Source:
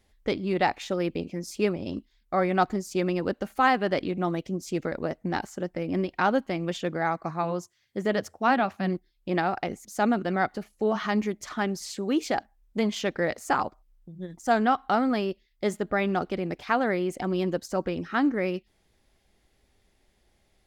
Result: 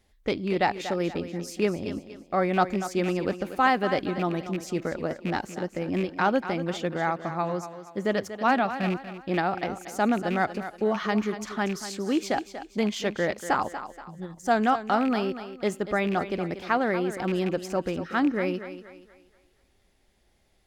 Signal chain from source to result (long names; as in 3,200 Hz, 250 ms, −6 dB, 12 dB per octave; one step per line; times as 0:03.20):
loose part that buzzes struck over −30 dBFS, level −26 dBFS
feedback echo with a high-pass in the loop 238 ms, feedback 39%, high-pass 190 Hz, level −11 dB